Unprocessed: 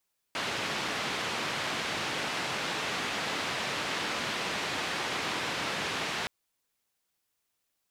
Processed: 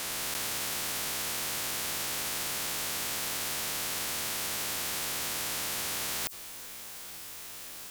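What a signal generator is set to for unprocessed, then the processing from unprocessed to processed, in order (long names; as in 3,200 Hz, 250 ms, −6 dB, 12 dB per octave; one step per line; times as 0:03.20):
band-limited noise 120–3,100 Hz, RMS −33 dBFS 5.92 s
peak hold with a rise ahead of every peak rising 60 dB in 1.19 s
in parallel at +3 dB: brickwall limiter −26 dBFS
on the sum: every bin compressed towards the loudest bin 10 to 1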